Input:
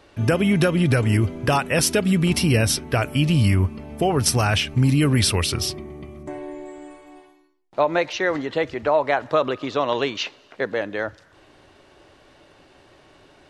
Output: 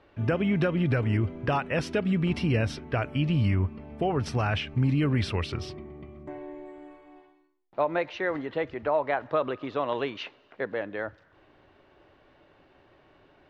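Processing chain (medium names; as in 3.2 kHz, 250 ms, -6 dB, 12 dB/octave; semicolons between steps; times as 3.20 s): low-pass 2.7 kHz 12 dB/octave; trim -6.5 dB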